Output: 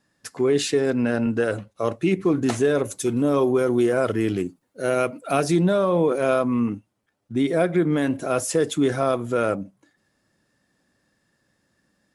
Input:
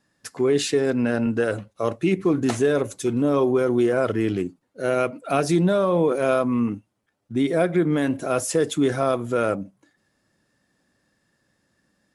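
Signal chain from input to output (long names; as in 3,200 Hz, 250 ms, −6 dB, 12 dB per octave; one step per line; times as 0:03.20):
0:02.85–0:05.44: high-shelf EQ 8,600 Hz +9.5 dB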